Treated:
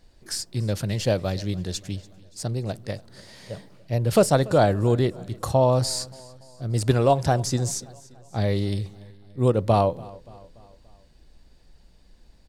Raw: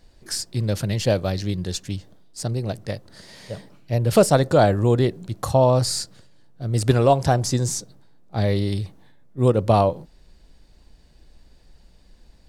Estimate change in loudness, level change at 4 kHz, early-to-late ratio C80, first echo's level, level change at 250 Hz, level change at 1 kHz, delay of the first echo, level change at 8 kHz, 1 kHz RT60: −2.5 dB, −2.5 dB, no reverb audible, −22.0 dB, −2.5 dB, −2.5 dB, 288 ms, −2.5 dB, no reverb audible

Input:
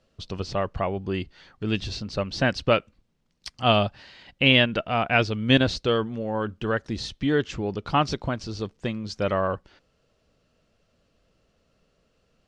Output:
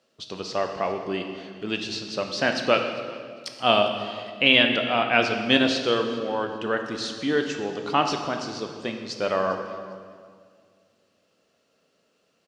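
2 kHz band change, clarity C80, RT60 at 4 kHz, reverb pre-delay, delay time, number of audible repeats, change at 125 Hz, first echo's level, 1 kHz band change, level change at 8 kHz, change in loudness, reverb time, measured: +2.0 dB, 7.5 dB, 1.7 s, 15 ms, 402 ms, 2, −10.5 dB, −21.5 dB, +1.5 dB, +4.0 dB, +1.0 dB, 2.0 s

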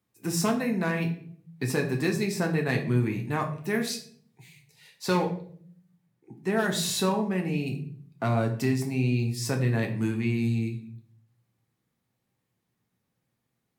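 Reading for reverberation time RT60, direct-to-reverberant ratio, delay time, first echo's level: 0.55 s, 2.0 dB, no echo audible, no echo audible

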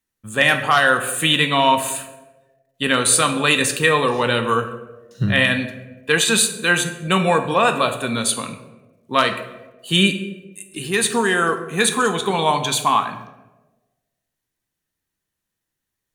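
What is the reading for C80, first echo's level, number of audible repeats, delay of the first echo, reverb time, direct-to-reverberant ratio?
12.0 dB, no echo audible, no echo audible, no echo audible, 1.2 s, 6.0 dB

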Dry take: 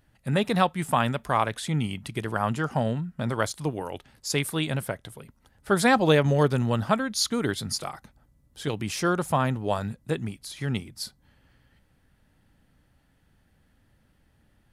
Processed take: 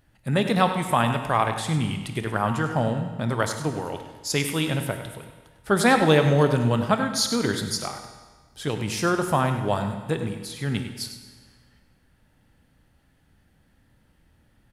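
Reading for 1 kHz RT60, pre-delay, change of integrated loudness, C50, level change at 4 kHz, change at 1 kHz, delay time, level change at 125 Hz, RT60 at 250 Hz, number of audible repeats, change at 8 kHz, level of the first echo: 1.4 s, 25 ms, +2.5 dB, 6.5 dB, +2.5 dB, +2.5 dB, 99 ms, +2.5 dB, 1.4 s, 1, +2.5 dB, −11.5 dB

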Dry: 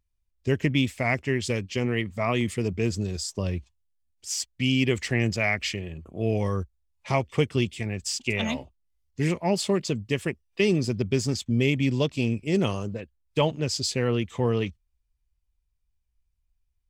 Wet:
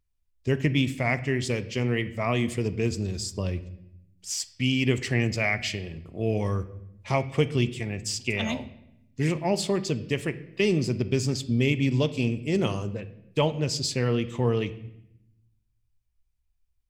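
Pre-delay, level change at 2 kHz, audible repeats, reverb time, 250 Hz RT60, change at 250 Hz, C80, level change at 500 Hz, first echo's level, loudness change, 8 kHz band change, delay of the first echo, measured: 6 ms, −0.5 dB, no echo audible, 0.80 s, 1.3 s, −0.5 dB, 17.5 dB, −0.5 dB, no echo audible, −0.5 dB, −1.0 dB, no echo audible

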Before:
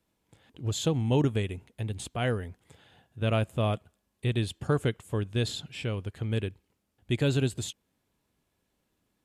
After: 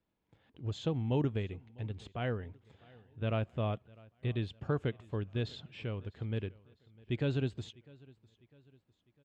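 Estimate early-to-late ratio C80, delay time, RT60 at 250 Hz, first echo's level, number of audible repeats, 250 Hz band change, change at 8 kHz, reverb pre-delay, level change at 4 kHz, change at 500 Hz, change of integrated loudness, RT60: no reverb audible, 652 ms, no reverb audible, −24.0 dB, 2, −6.0 dB, below −20 dB, no reverb audible, −10.5 dB, −6.5 dB, −6.5 dB, no reverb audible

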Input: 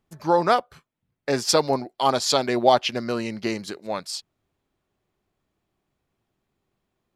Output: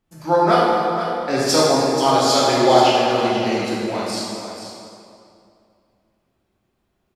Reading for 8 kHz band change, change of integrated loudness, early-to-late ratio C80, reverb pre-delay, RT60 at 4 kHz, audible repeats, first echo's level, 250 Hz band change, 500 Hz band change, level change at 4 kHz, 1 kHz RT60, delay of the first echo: +4.5 dB, +5.5 dB, −1.0 dB, 3 ms, 2.0 s, 1, −9.5 dB, +7.0 dB, +6.0 dB, +5.0 dB, 2.5 s, 485 ms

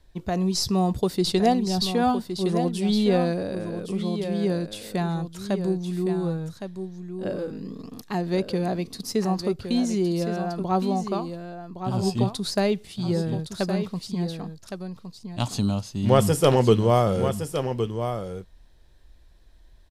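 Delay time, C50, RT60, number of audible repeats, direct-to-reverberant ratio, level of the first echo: 1,114 ms, no reverb audible, no reverb audible, 1, no reverb audible, −8.5 dB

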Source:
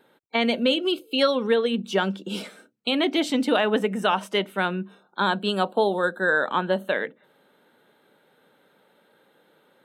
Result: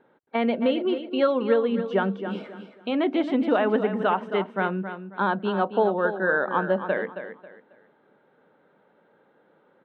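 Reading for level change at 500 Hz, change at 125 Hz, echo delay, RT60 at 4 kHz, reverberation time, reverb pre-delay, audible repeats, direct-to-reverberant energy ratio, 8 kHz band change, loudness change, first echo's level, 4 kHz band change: +0.5 dB, 0.0 dB, 271 ms, no reverb audible, no reverb audible, no reverb audible, 3, no reverb audible, below −25 dB, −1.0 dB, −10.0 dB, −12.0 dB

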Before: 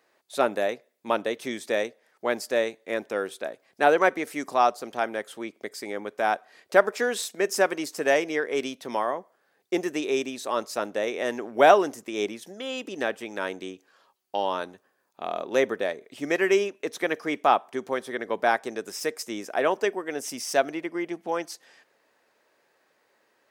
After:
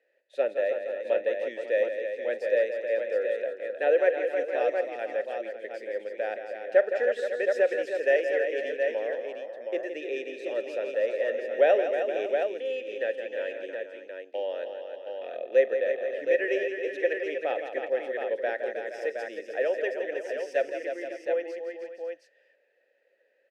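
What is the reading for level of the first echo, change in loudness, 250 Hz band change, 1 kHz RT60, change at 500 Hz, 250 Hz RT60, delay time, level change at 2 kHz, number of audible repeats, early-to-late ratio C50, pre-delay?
−19.5 dB, −2.0 dB, −10.5 dB, no reverb audible, +0.5 dB, no reverb audible, 42 ms, −4.0 dB, 6, no reverb audible, no reverb audible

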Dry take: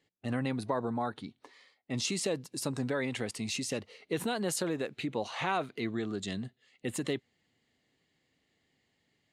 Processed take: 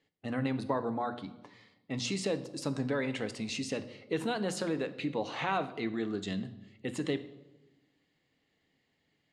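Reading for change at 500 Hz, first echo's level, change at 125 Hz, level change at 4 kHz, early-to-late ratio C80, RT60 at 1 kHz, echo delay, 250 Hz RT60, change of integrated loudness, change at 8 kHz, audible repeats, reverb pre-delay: +0.5 dB, no echo audible, −0.5 dB, −1.5 dB, 16.5 dB, 0.85 s, no echo audible, 1.5 s, −0.5 dB, −6.0 dB, no echo audible, 4 ms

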